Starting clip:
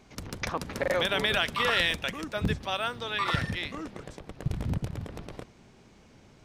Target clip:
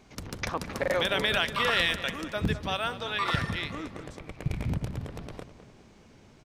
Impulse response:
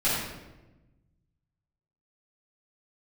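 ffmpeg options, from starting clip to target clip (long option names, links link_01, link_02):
-filter_complex "[0:a]asettb=1/sr,asplit=3[link_01][link_02][link_03];[link_01]atrim=end=4.194[link_04];[link_02]atrim=start=4.19:end=4.72,asetpts=PTS-STARTPTS,afade=type=in:duration=0.004:curve=qsin,afade=type=out:start_time=0.526:duration=0.004:curve=qsin,equalizer=frequency=2300:width_type=o:width=0.27:gain=12.5[link_05];[link_03]atrim=start=4.716[link_06];[link_04][link_05]acrossfade=duration=0.004:curve1=hsin:curve2=qsin[link_07];[link_07][link_06]acrossfade=duration=0.004:curve1=qsin:curve2=hsin,asplit=2[link_08][link_09];[link_09]adelay=207,lowpass=frequency=2200:poles=1,volume=-11.5dB,asplit=2[link_10][link_11];[link_11]adelay=207,lowpass=frequency=2200:poles=1,volume=0.48,asplit=2[link_12][link_13];[link_13]adelay=207,lowpass=frequency=2200:poles=1,volume=0.48,asplit=2[link_14][link_15];[link_15]adelay=207,lowpass=frequency=2200:poles=1,volume=0.48,asplit=2[link_16][link_17];[link_17]adelay=207,lowpass=frequency=2200:poles=1,volume=0.48[link_18];[link_08][link_10][link_12][link_14][link_16][link_18]amix=inputs=6:normalize=0"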